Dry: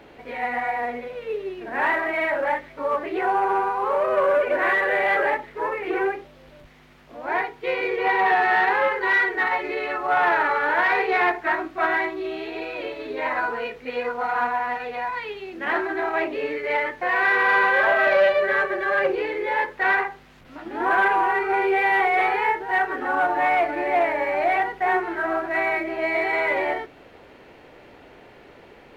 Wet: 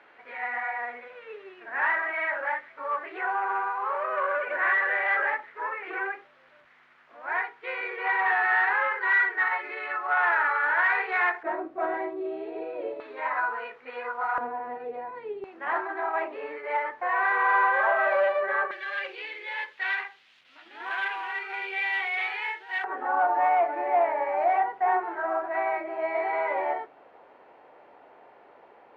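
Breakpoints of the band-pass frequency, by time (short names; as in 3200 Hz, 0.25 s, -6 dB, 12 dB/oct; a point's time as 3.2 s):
band-pass, Q 1.6
1500 Hz
from 11.43 s 510 Hz
from 13 s 1200 Hz
from 14.38 s 390 Hz
from 15.44 s 1000 Hz
from 18.71 s 3200 Hz
from 22.84 s 860 Hz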